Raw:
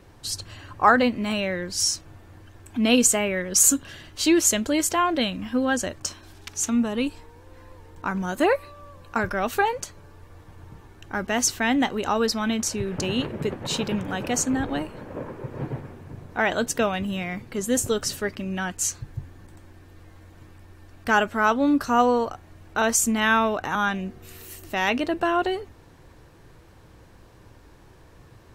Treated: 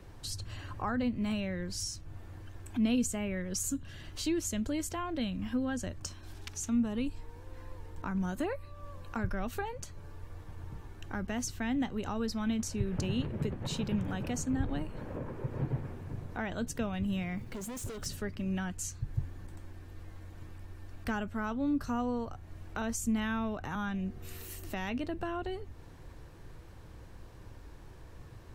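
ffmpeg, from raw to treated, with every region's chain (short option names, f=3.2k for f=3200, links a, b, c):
-filter_complex "[0:a]asettb=1/sr,asplit=3[a][b][c];[a]atrim=end=17.384[d];[b]atrim=start=17.38:end=18.06,asetpts=PTS-STARTPTS,afade=t=in:d=0.004:c=qsin,afade=t=out:st=0.676:d=0.004:c=qsin,acompressor=threshold=-29dB:ratio=1.5:attack=3.2:release=140:knee=1:detection=peak,volume=32.5dB,asoftclip=hard,volume=-32.5dB,acrusher=bits=6:mode=log:mix=0:aa=0.000001[e];[c]atrim=start=18.056[f];[d][e]acrossfade=d=0.004:c1=hsin:c2=qsin[g];[g][f]acrossfade=d=0.004:c1=qsin:c2=hsin,lowshelf=f=87:g=9,acrossover=split=220[h][i];[i]acompressor=threshold=-38dB:ratio=2.5[j];[h][j]amix=inputs=2:normalize=0,volume=-3.5dB"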